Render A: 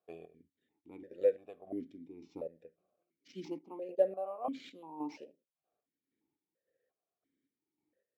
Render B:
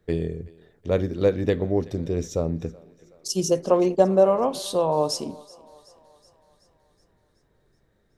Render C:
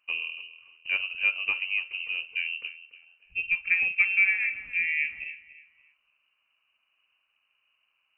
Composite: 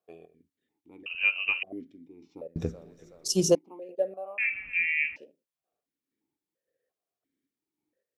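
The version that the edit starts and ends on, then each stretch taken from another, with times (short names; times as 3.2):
A
1.06–1.63 from C
2.56–3.55 from B
4.38–5.16 from C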